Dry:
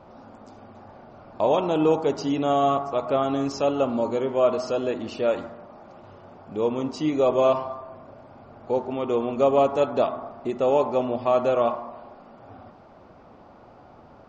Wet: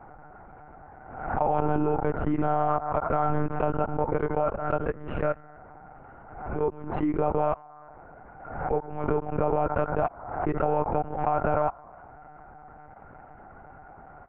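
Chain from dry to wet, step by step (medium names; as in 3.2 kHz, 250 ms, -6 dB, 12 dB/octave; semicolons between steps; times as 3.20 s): Chebyshev low-pass 2 kHz, order 4; tilt shelf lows -9 dB, about 1.3 kHz; small resonant body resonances 330/770/1400 Hz, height 14 dB, ringing for 25 ms; level held to a coarse grid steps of 24 dB; monotone LPC vocoder at 8 kHz 150 Hz; swell ahead of each attack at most 65 dB/s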